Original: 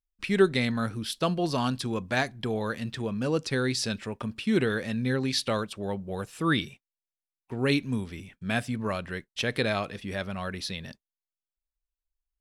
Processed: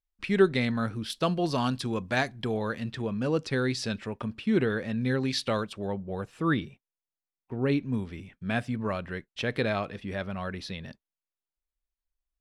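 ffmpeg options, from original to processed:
-af "asetnsamples=n=441:p=0,asendcmd='1.1 lowpass f 7200;2.57 lowpass f 3500;4.36 lowpass f 2000;5.01 lowpass f 4700;5.87 lowpass f 1800;6.54 lowpass f 1000;7.94 lowpass f 2400',lowpass=f=3.5k:p=1"

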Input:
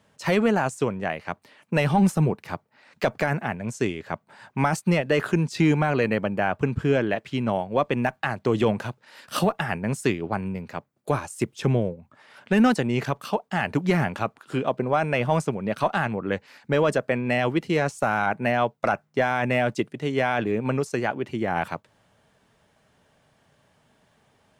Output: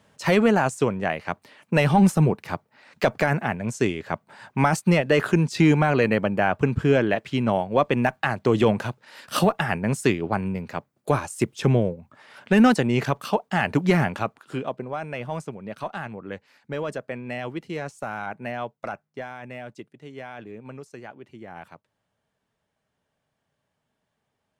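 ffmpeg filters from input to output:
-af "volume=2.5dB,afade=t=out:st=13.91:d=0.97:silence=0.281838,afade=t=out:st=18.79:d=0.61:silence=0.473151"

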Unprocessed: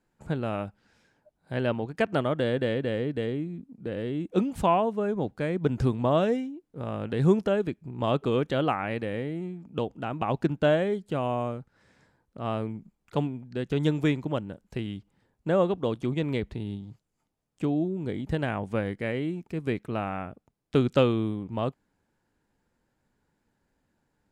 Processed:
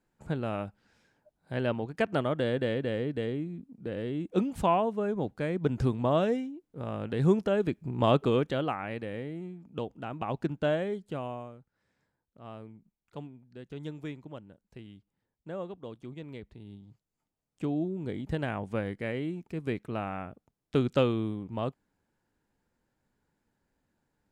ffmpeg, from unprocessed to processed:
-af "volume=15dB,afade=t=in:st=7.51:d=0.39:silence=0.473151,afade=t=out:st=7.9:d=0.75:silence=0.334965,afade=t=out:st=11.08:d=0.42:silence=0.354813,afade=t=in:st=16.57:d=1.27:silence=0.281838"

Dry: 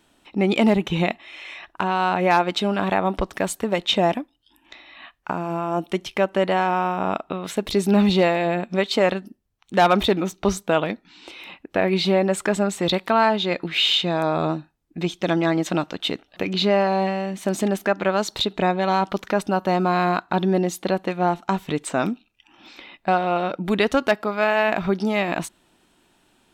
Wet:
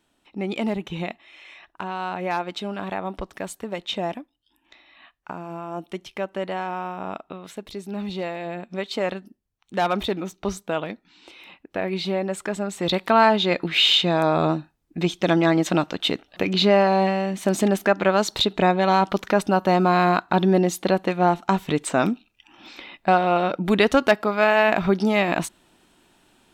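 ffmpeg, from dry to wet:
-af "volume=9dB,afade=t=out:st=7.28:d=0.57:silence=0.446684,afade=t=in:st=7.85:d=1.26:silence=0.354813,afade=t=in:st=12.67:d=0.51:silence=0.398107"

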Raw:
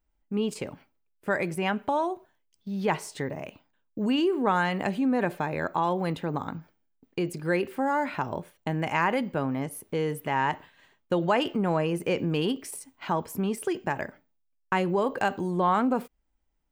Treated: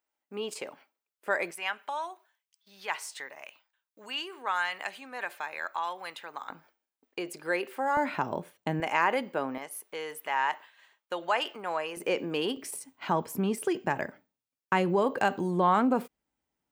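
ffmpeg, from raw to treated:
-af "asetnsamples=n=441:p=0,asendcmd='1.51 highpass f 1200;6.5 highpass f 510;7.97 highpass f 160;8.8 highpass f 370;9.58 highpass f 780;11.97 highpass f 360;12.57 highpass f 130',highpass=510"

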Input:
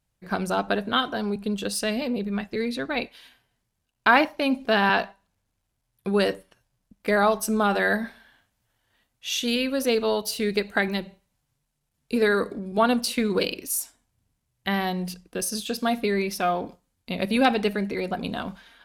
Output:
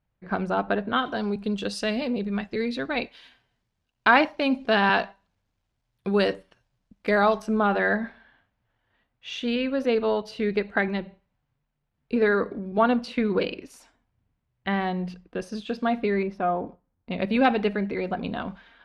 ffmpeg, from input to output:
-af "asetnsamples=n=441:p=0,asendcmd='1.06 lowpass f 5100;7.42 lowpass f 2400;16.23 lowpass f 1200;17.11 lowpass f 2800',lowpass=2.3k"

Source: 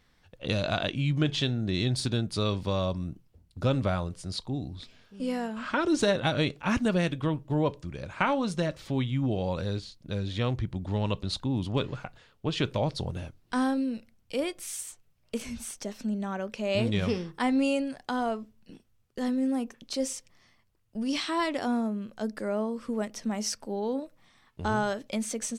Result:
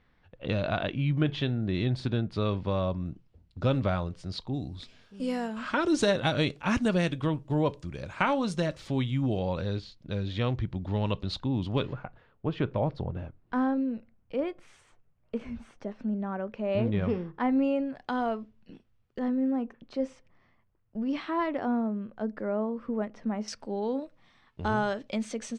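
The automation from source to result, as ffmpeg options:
-af "asetnsamples=n=441:p=0,asendcmd='3.06 lowpass f 4200;4.54 lowpass f 10000;9.39 lowpass f 4300;11.93 lowpass f 1600;17.95 lowpass f 3300;19.19 lowpass f 1700;23.48 lowpass f 4300',lowpass=2.5k"

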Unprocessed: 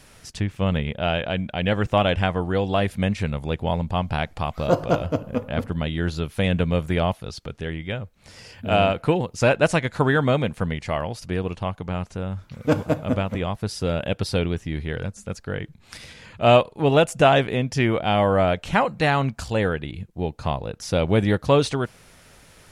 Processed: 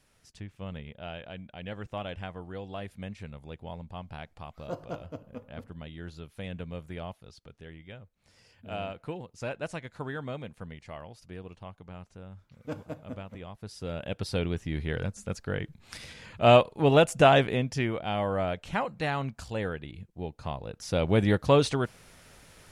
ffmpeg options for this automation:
-af "volume=3.5dB,afade=t=in:st=13.53:d=0.53:silence=0.446684,afade=t=in:st=14.06:d=0.86:silence=0.446684,afade=t=out:st=17.44:d=0.48:silence=0.446684,afade=t=in:st=20.53:d=0.75:silence=0.473151"

